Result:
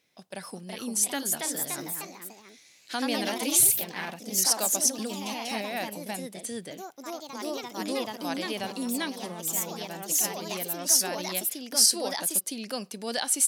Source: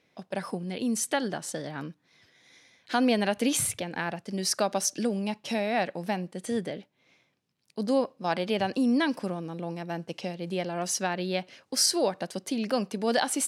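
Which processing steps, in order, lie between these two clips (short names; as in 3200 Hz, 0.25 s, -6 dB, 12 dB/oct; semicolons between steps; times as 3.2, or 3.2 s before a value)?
pre-emphasis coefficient 0.8; echoes that change speed 0.403 s, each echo +2 st, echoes 3; gain +6 dB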